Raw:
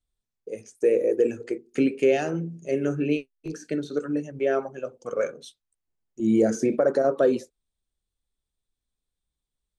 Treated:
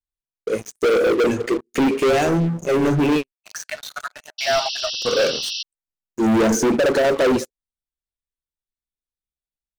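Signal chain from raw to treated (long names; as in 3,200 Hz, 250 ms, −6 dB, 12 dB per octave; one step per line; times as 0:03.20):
0:03.32–0:04.93: Chebyshev high-pass filter 620 Hz, order 10
leveller curve on the samples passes 5
0:04.38–0:05.63: sound drawn into the spectrogram noise 2,600–5,900 Hz −24 dBFS
level −3.5 dB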